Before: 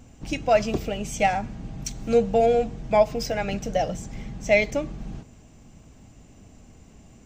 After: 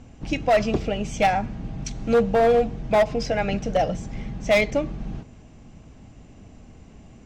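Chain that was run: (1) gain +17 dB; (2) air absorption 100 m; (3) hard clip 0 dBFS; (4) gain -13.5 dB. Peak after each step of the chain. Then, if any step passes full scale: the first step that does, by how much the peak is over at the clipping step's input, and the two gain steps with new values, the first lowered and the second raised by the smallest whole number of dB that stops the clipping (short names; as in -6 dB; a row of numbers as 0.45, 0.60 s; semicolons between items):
+10.0, +9.5, 0.0, -13.5 dBFS; step 1, 9.5 dB; step 1 +7 dB, step 4 -3.5 dB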